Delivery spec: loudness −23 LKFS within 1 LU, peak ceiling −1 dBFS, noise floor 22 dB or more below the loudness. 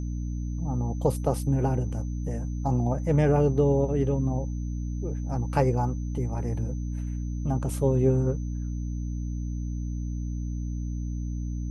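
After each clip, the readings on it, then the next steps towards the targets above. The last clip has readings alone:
mains hum 60 Hz; hum harmonics up to 300 Hz; level of the hum −28 dBFS; interfering tone 6,100 Hz; level of the tone −55 dBFS; integrated loudness −28.0 LKFS; sample peak −9.5 dBFS; target loudness −23.0 LKFS
→ mains-hum notches 60/120/180/240/300 Hz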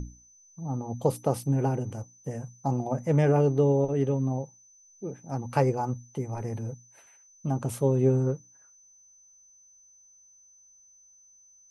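mains hum none found; interfering tone 6,100 Hz; level of the tone −55 dBFS
→ notch filter 6,100 Hz, Q 30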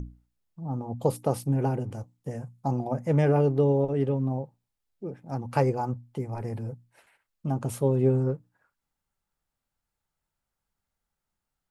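interfering tone none found; integrated loudness −28.0 LKFS; sample peak −10.5 dBFS; target loudness −23.0 LKFS
→ level +5 dB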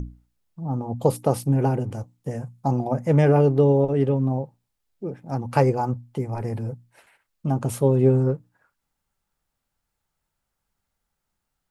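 integrated loudness −22.5 LKFS; sample peak −5.0 dBFS; background noise floor −81 dBFS

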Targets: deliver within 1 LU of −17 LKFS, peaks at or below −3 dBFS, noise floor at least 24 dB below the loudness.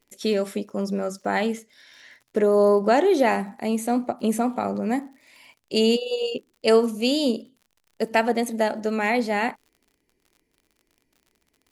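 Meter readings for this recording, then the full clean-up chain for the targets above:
crackle rate 56 per second; integrated loudness −23.5 LKFS; sample peak −7.0 dBFS; target loudness −17.0 LKFS
→ click removal
level +6.5 dB
brickwall limiter −3 dBFS

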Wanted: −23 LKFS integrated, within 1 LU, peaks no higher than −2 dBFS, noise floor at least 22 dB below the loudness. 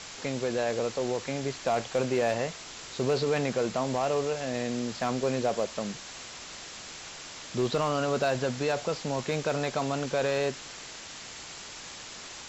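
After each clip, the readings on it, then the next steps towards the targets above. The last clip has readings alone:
share of clipped samples 0.2%; peaks flattened at −19.0 dBFS; background noise floor −44 dBFS; target noise floor −53 dBFS; integrated loudness −31.0 LKFS; sample peak −19.0 dBFS; target loudness −23.0 LKFS
→ clipped peaks rebuilt −19 dBFS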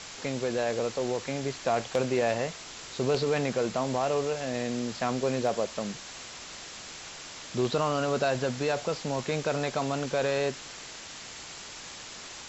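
share of clipped samples 0.0%; background noise floor −44 dBFS; target noise floor −53 dBFS
→ noise reduction from a noise print 9 dB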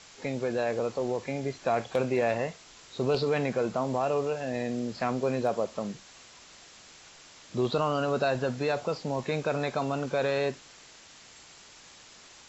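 background noise floor −53 dBFS; integrated loudness −30.0 LKFS; sample peak −12.0 dBFS; target loudness −23.0 LKFS
→ level +7 dB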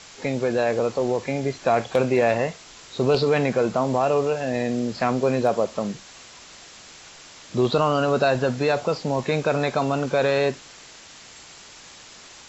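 integrated loudness −23.0 LKFS; sample peak −5.0 dBFS; background noise floor −46 dBFS

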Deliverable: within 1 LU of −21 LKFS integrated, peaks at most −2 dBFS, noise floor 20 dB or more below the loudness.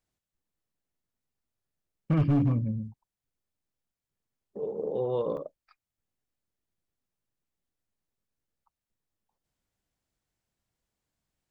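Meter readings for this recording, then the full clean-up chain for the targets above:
share of clipped samples 0.4%; peaks flattened at −19.0 dBFS; number of dropouts 1; longest dropout 1.3 ms; integrated loudness −29.0 LKFS; sample peak −19.0 dBFS; target loudness −21.0 LKFS
→ clipped peaks rebuilt −19 dBFS
repair the gap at 0:05.37, 1.3 ms
level +8 dB

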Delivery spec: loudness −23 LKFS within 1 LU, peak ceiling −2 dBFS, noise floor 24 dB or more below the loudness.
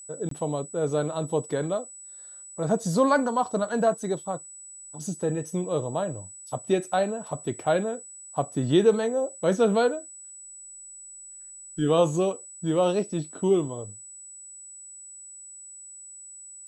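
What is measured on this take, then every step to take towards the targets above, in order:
number of dropouts 1; longest dropout 23 ms; interfering tone 7,900 Hz; level of the tone −42 dBFS; integrated loudness −26.5 LKFS; sample peak −9.0 dBFS; target loudness −23.0 LKFS
→ repair the gap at 0:00.29, 23 ms
notch filter 7,900 Hz, Q 30
level +3.5 dB

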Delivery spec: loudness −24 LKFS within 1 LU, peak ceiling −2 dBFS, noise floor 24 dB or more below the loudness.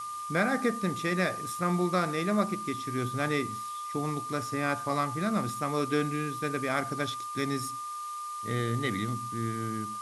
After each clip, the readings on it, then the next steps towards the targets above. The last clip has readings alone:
interfering tone 1,200 Hz; level of the tone −35 dBFS; background noise floor −38 dBFS; target noise floor −55 dBFS; integrated loudness −31.0 LKFS; sample peak −13.0 dBFS; target loudness −24.0 LKFS
→ notch filter 1,200 Hz, Q 30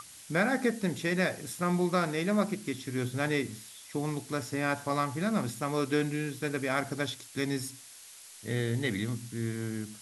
interfering tone none found; background noise floor −51 dBFS; target noise floor −56 dBFS
→ noise reduction from a noise print 6 dB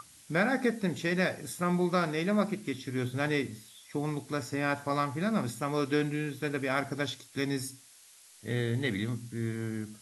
background noise floor −56 dBFS; integrated loudness −31.5 LKFS; sample peak −14.0 dBFS; target loudness −24.0 LKFS
→ level +7.5 dB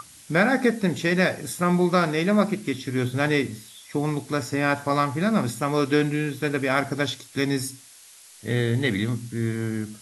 integrated loudness −24.0 LKFS; sample peak −6.5 dBFS; background noise floor −49 dBFS

